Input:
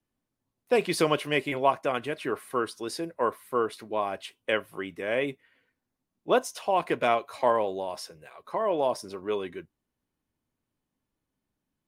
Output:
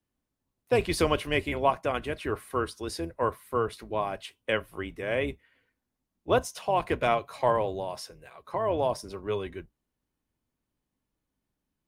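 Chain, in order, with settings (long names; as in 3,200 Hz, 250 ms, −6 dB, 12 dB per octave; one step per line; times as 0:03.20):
sub-octave generator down 2 octaves, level −3 dB
level −1 dB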